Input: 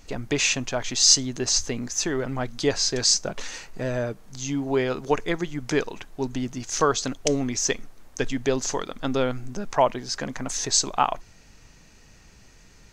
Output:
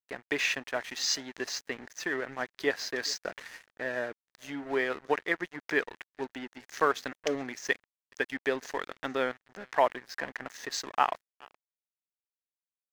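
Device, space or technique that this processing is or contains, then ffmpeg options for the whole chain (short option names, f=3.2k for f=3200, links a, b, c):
pocket radio on a weak battery: -af "highpass=310,lowpass=3.7k,aecho=1:1:421|842:0.0794|0.0119,aeval=exprs='sgn(val(0))*max(abs(val(0))-0.01,0)':c=same,equalizer=f=1.8k:t=o:w=0.5:g=10,volume=-4.5dB"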